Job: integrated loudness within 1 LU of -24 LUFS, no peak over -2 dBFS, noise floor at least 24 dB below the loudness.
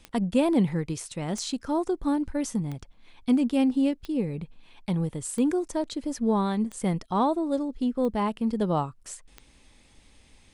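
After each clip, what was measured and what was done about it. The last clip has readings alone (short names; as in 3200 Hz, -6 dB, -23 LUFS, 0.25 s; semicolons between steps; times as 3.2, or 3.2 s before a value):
clicks 8; loudness -27.5 LUFS; peak -11.0 dBFS; loudness target -24.0 LUFS
-> de-click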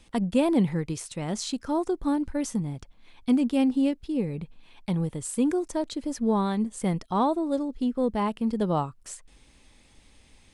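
clicks 0; loudness -27.5 LUFS; peak -11.0 dBFS; loudness target -24.0 LUFS
-> gain +3.5 dB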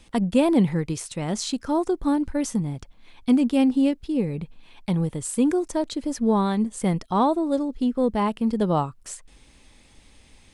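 loudness -24.0 LUFS; peak -7.5 dBFS; noise floor -54 dBFS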